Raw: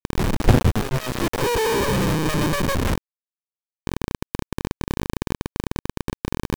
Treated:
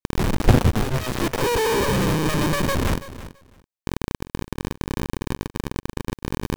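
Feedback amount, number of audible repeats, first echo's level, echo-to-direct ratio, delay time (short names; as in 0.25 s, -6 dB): 16%, 2, -15.0 dB, -15.0 dB, 0.332 s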